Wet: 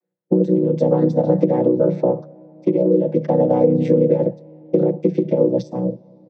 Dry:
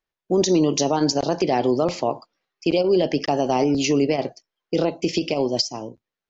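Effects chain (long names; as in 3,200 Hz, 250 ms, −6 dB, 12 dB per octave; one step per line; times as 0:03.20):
channel vocoder with a chord as carrier major triad, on B2
low-pass filter 1,200 Hz 6 dB per octave
low-shelf EQ 160 Hz −8.5 dB
mains-hum notches 50/100/150 Hz
comb filter 5.9 ms, depth 66%
downward compressor 6 to 1, threshold −25 dBFS, peak gain reduction 13 dB
hollow resonant body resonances 220/500 Hz, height 14 dB, ringing for 25 ms
on a send: convolution reverb RT60 4.8 s, pre-delay 10 ms, DRR 24 dB
on the sum: level +3.5 dB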